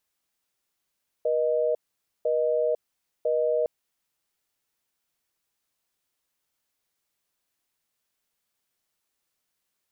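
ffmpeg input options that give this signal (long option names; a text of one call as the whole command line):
ffmpeg -f lavfi -i "aevalsrc='0.0631*(sin(2*PI*480*t)+sin(2*PI*620*t))*clip(min(mod(t,1),0.5-mod(t,1))/0.005,0,1)':duration=2.41:sample_rate=44100" out.wav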